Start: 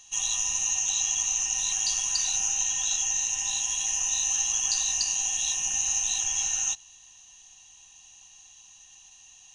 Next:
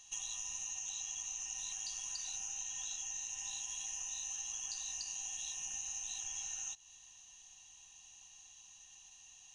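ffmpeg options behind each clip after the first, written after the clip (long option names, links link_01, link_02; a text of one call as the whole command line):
ffmpeg -i in.wav -af "acompressor=threshold=-34dB:ratio=6,volume=-6dB" out.wav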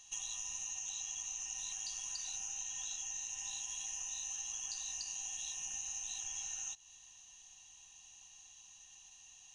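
ffmpeg -i in.wav -af anull out.wav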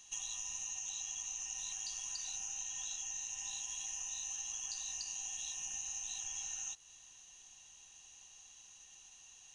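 ffmpeg -i in.wav -af "acrusher=bits=10:mix=0:aa=0.000001,aresample=22050,aresample=44100" out.wav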